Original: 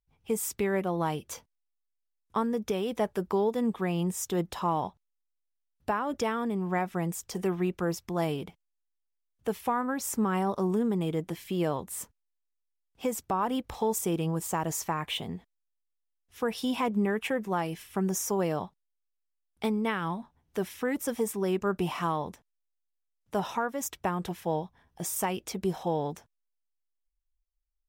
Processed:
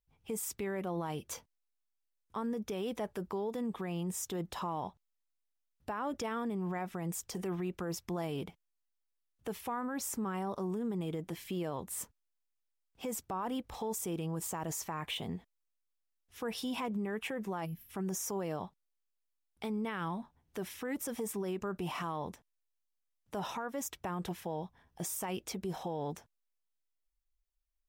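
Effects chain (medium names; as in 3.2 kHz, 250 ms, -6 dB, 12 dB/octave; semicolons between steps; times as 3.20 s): time-frequency box 17.65–17.90 s, 300–11000 Hz -19 dB; peak limiter -27 dBFS, peak gain reduction 8.5 dB; trim -2 dB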